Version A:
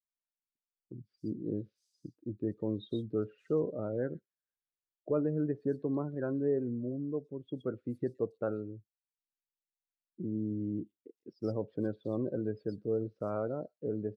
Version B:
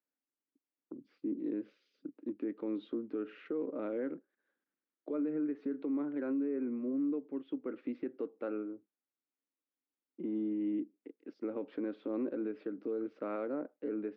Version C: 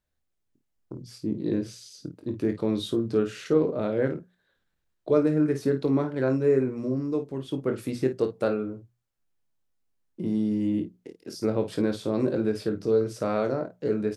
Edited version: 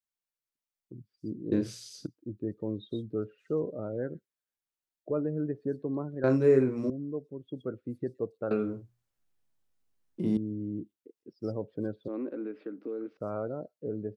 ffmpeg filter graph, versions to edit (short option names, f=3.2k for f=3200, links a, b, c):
-filter_complex "[2:a]asplit=3[a][b][c];[0:a]asplit=5[d][e][f][g][h];[d]atrim=end=1.522[i];[a]atrim=start=1.518:end=2.072[j];[e]atrim=start=2.068:end=6.242[k];[b]atrim=start=6.238:end=6.902[l];[f]atrim=start=6.898:end=8.512[m];[c]atrim=start=8.508:end=10.372[n];[g]atrim=start=10.368:end=12.082[o];[1:a]atrim=start=12.078:end=13.172[p];[h]atrim=start=13.168[q];[i][j]acrossfade=d=0.004:c1=hsin:c2=hsin[r];[r][k]acrossfade=d=0.004:c1=hsin:c2=hsin[s];[s][l]acrossfade=d=0.004:c1=hsin:c2=hsin[t];[t][m]acrossfade=d=0.004:c1=hsin:c2=hsin[u];[u][n]acrossfade=d=0.004:c1=hsin:c2=hsin[v];[v][o]acrossfade=d=0.004:c1=hsin:c2=hsin[w];[w][p]acrossfade=d=0.004:c1=hsin:c2=hsin[x];[x][q]acrossfade=d=0.004:c1=hsin:c2=hsin"